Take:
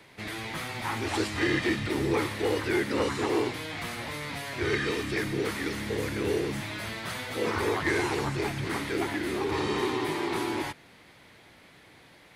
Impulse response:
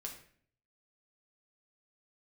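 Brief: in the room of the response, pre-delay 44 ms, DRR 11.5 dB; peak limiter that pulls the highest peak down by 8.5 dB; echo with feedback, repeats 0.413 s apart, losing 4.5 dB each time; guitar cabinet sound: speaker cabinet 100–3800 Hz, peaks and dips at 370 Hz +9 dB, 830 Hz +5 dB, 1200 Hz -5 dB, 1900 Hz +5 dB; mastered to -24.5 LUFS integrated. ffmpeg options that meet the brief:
-filter_complex "[0:a]alimiter=level_in=2dB:limit=-24dB:level=0:latency=1,volume=-2dB,aecho=1:1:413|826|1239|1652|2065|2478|2891|3304|3717:0.596|0.357|0.214|0.129|0.0772|0.0463|0.0278|0.0167|0.01,asplit=2[a][b];[1:a]atrim=start_sample=2205,adelay=44[c];[b][c]afir=irnorm=-1:irlink=0,volume=-9dB[d];[a][d]amix=inputs=2:normalize=0,highpass=100,equalizer=f=370:t=q:w=4:g=9,equalizer=f=830:t=q:w=4:g=5,equalizer=f=1.2k:t=q:w=4:g=-5,equalizer=f=1.9k:t=q:w=4:g=5,lowpass=f=3.8k:w=0.5412,lowpass=f=3.8k:w=1.3066,volume=4.5dB"

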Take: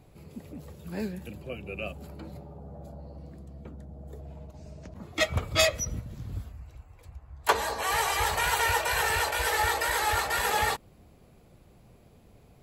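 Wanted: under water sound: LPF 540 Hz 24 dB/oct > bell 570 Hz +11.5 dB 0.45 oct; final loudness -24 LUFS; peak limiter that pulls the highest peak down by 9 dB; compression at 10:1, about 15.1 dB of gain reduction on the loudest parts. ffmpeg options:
-af "acompressor=threshold=-34dB:ratio=10,alimiter=level_in=6dB:limit=-24dB:level=0:latency=1,volume=-6dB,lowpass=f=540:w=0.5412,lowpass=f=540:w=1.3066,equalizer=f=570:t=o:w=0.45:g=11.5,volume=20dB"

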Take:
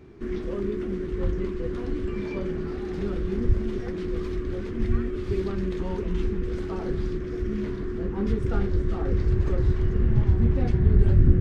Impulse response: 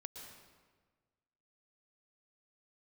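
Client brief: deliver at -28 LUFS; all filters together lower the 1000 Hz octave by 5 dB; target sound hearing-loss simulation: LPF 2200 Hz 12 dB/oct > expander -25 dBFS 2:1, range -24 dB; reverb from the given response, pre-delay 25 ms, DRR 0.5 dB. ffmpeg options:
-filter_complex "[0:a]equalizer=f=1k:t=o:g=-6.5,asplit=2[a][b];[1:a]atrim=start_sample=2205,adelay=25[c];[b][c]afir=irnorm=-1:irlink=0,volume=3.5dB[d];[a][d]amix=inputs=2:normalize=0,lowpass=2.2k,agate=range=-24dB:threshold=-25dB:ratio=2,volume=-4dB"

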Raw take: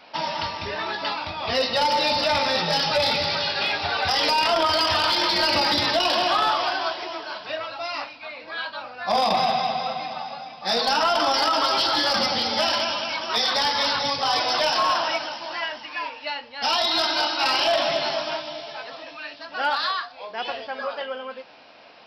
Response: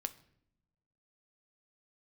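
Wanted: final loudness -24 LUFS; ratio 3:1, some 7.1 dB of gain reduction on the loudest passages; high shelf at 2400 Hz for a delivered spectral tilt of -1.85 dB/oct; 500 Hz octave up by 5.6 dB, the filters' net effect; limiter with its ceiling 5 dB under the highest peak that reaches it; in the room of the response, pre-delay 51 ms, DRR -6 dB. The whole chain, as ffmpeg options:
-filter_complex "[0:a]equalizer=f=500:t=o:g=7,highshelf=f=2.4k:g=5.5,acompressor=threshold=-23dB:ratio=3,alimiter=limit=-18dB:level=0:latency=1,asplit=2[a][b];[1:a]atrim=start_sample=2205,adelay=51[c];[b][c]afir=irnorm=-1:irlink=0,volume=7dB[d];[a][d]amix=inputs=2:normalize=0,volume=-5dB"

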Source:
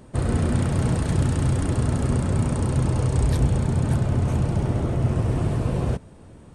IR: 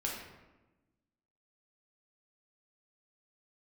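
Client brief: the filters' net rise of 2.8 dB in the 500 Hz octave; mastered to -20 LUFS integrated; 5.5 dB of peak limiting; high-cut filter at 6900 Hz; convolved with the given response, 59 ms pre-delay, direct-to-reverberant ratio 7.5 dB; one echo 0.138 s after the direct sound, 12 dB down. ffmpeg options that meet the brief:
-filter_complex "[0:a]lowpass=6.9k,equalizer=f=500:t=o:g=3.5,alimiter=limit=-14.5dB:level=0:latency=1,aecho=1:1:138:0.251,asplit=2[a][b];[1:a]atrim=start_sample=2205,adelay=59[c];[b][c]afir=irnorm=-1:irlink=0,volume=-10.5dB[d];[a][d]amix=inputs=2:normalize=0,volume=4dB"

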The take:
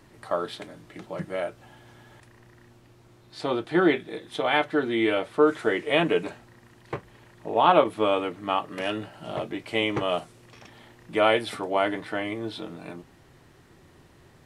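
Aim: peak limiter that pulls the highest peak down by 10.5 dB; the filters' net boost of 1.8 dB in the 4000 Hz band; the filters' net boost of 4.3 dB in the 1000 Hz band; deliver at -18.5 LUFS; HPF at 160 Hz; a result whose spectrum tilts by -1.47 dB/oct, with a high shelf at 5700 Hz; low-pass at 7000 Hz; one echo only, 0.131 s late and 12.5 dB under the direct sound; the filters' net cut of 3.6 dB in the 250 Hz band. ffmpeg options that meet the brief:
-af "highpass=160,lowpass=7k,equalizer=f=250:t=o:g=-5.5,equalizer=f=1k:t=o:g=6,equalizer=f=4k:t=o:g=4.5,highshelf=f=5.7k:g=-6.5,alimiter=limit=-11.5dB:level=0:latency=1,aecho=1:1:131:0.237,volume=8.5dB"

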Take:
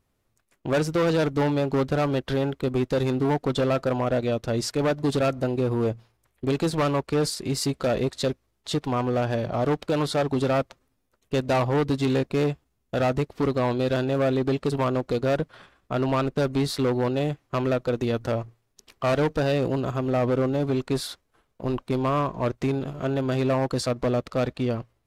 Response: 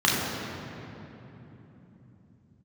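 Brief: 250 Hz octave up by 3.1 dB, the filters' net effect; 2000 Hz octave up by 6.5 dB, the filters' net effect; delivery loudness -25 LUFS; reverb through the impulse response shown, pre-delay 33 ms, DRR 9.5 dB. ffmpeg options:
-filter_complex "[0:a]equalizer=f=250:t=o:g=3.5,equalizer=f=2k:t=o:g=8.5,asplit=2[a][b];[1:a]atrim=start_sample=2205,adelay=33[c];[b][c]afir=irnorm=-1:irlink=0,volume=-27.5dB[d];[a][d]amix=inputs=2:normalize=0,volume=-2.5dB"

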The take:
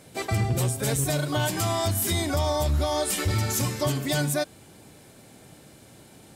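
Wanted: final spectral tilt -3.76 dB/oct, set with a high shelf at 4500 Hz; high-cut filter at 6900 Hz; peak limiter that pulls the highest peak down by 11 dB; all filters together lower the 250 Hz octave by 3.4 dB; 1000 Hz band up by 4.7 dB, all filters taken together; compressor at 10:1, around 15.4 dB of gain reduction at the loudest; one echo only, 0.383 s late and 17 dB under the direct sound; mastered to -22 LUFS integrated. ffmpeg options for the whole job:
-af "lowpass=6.9k,equalizer=f=250:t=o:g=-5.5,equalizer=f=1k:t=o:g=6,highshelf=f=4.5k:g=6,acompressor=threshold=-36dB:ratio=10,alimiter=level_in=12.5dB:limit=-24dB:level=0:latency=1,volume=-12.5dB,aecho=1:1:383:0.141,volume=23.5dB"

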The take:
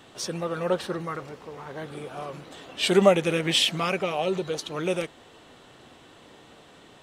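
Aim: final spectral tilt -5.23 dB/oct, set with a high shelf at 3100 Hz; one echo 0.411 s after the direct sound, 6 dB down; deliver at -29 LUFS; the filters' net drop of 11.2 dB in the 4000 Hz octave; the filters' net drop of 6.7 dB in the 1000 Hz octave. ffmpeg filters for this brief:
-af "equalizer=f=1k:t=o:g=-8,highshelf=f=3.1k:g=-8,equalizer=f=4k:t=o:g=-9,aecho=1:1:411:0.501,volume=-0.5dB"

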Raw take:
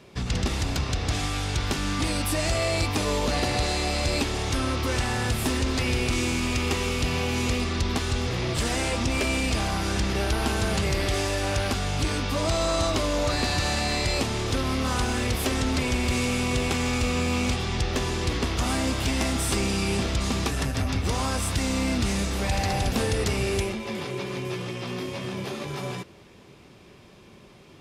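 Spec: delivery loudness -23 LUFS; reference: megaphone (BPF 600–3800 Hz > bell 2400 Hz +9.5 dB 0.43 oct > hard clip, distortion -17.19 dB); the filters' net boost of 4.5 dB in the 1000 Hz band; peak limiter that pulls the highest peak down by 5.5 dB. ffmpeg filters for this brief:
-af "equalizer=f=1k:t=o:g=6.5,alimiter=limit=-18dB:level=0:latency=1,highpass=600,lowpass=3.8k,equalizer=f=2.4k:t=o:w=0.43:g=9.5,asoftclip=type=hard:threshold=-23dB,volume=5dB"

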